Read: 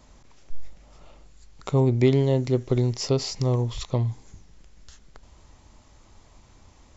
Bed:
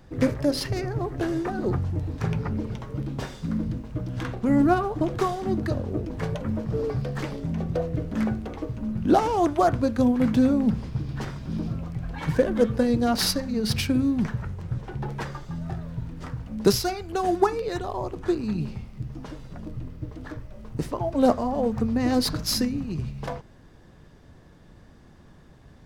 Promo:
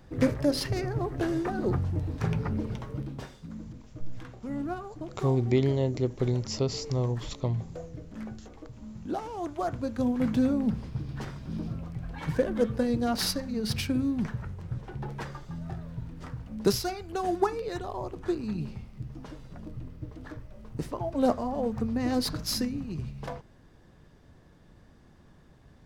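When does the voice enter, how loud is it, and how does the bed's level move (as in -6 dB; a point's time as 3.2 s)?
3.50 s, -5.0 dB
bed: 2.86 s -2 dB
3.53 s -14 dB
9.28 s -14 dB
10.22 s -5 dB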